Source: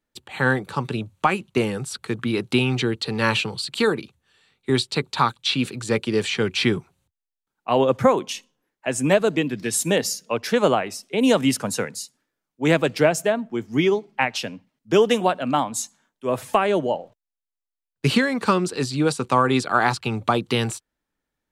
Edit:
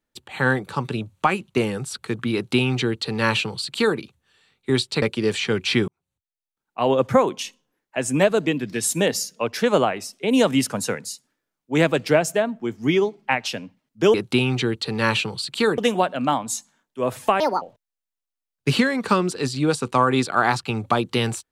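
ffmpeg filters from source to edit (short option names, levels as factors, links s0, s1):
-filter_complex "[0:a]asplit=7[s0][s1][s2][s3][s4][s5][s6];[s0]atrim=end=5.022[s7];[s1]atrim=start=5.918:end=6.78,asetpts=PTS-STARTPTS,afade=t=out:st=0.858:d=0.004:c=hsin[s8];[s2]atrim=start=6.78:end=15.042,asetpts=PTS-STARTPTS,afade=t=in:d=1.12[s9];[s3]atrim=start=2.338:end=3.982[s10];[s4]atrim=start=15.038:end=16.664[s11];[s5]atrim=start=16.66:end=16.99,asetpts=PTS-STARTPTS,asetrate=67032,aresample=44100,atrim=end_sample=9574,asetpts=PTS-STARTPTS[s12];[s6]atrim=start=16.986[s13];[s8][s9]concat=n=2:v=0:a=1[s14];[s7][s14]acrossfade=d=0.004:c1=hsin:c2=hsin[s15];[s15][s10]acrossfade=d=0.004:c1=hsin:c2=hsin[s16];[s16][s11]acrossfade=d=0.004:c1=hsin:c2=hsin[s17];[s17][s12]acrossfade=d=0.004:c1=hsin:c2=hsin[s18];[s18][s13]acrossfade=d=0.004:c1=hsin:c2=hsin"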